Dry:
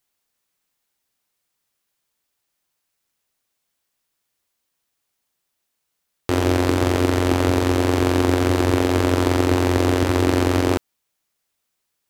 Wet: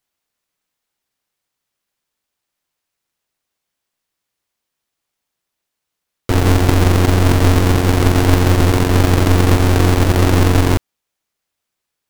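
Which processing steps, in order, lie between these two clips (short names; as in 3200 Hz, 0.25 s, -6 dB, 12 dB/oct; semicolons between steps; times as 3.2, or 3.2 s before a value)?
half-waves squared off; upward expander 1.5:1, over -18 dBFS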